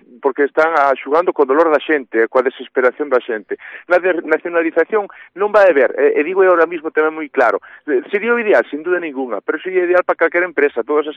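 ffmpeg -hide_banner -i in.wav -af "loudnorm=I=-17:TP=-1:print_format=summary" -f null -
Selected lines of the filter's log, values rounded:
Input Integrated:    -15.5 LUFS
Input True Peak:      -2.4 dBTP
Input LRA:             1.9 LU
Input Threshold:     -25.6 LUFS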